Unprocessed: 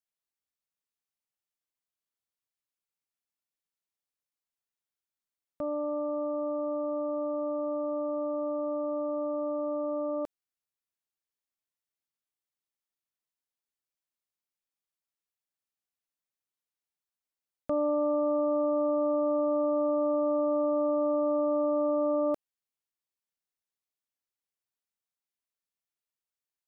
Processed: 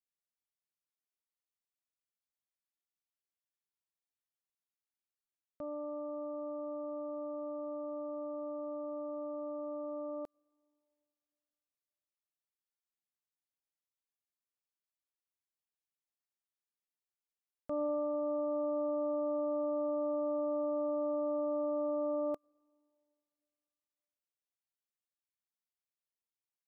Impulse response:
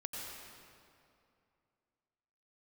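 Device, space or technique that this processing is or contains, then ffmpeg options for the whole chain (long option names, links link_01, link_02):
keyed gated reverb: -filter_complex "[0:a]asplit=3[link_01][link_02][link_03];[1:a]atrim=start_sample=2205[link_04];[link_02][link_04]afir=irnorm=-1:irlink=0[link_05];[link_03]apad=whole_len=1176285[link_06];[link_05][link_06]sidechaingate=range=-23dB:threshold=-28dB:ratio=16:detection=peak,volume=-8dB[link_07];[link_01][link_07]amix=inputs=2:normalize=0,volume=-9dB"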